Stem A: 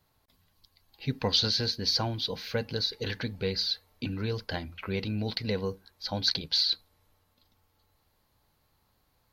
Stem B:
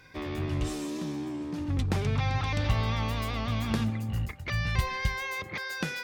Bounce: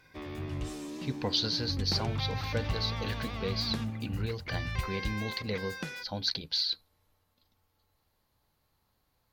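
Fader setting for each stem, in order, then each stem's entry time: −4.0, −6.0 decibels; 0.00, 0.00 seconds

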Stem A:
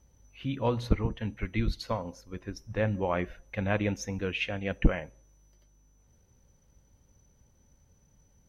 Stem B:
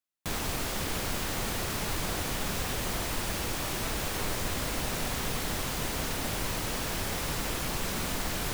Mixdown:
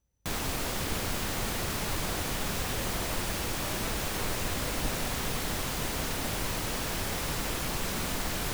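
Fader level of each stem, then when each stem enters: −15.5, 0.0 decibels; 0.00, 0.00 seconds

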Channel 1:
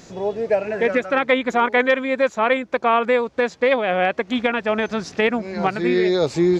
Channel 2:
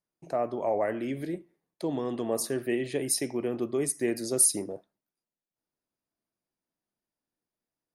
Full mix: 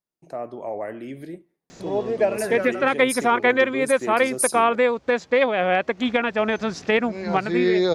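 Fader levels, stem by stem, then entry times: −1.0, −2.5 decibels; 1.70, 0.00 seconds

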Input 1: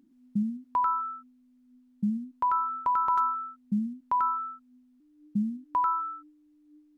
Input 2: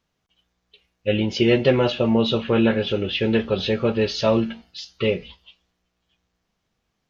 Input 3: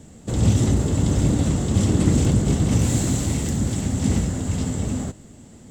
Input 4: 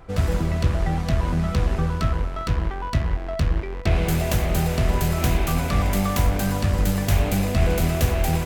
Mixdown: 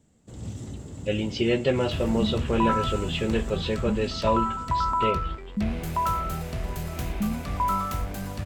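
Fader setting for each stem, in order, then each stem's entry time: 0.0, −6.0, −18.5, −10.5 decibels; 1.85, 0.00, 0.00, 1.75 seconds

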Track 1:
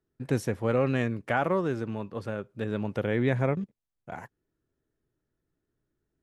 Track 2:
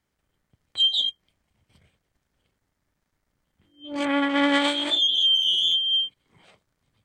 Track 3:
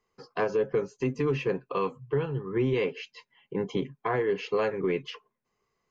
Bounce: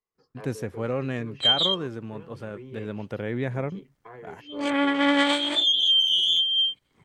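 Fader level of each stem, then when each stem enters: −3.0, 0.0, −17.0 decibels; 0.15, 0.65, 0.00 seconds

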